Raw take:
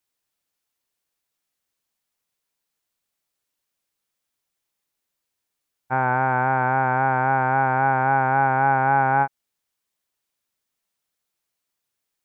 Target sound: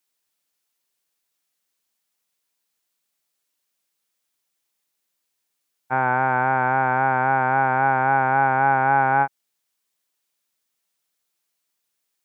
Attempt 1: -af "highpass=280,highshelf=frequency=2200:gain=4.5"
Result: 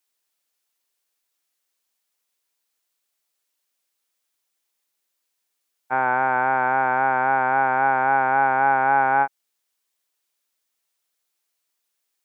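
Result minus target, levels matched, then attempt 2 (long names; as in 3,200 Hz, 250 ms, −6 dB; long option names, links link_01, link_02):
125 Hz band −10.0 dB
-af "highpass=130,highshelf=frequency=2200:gain=4.5"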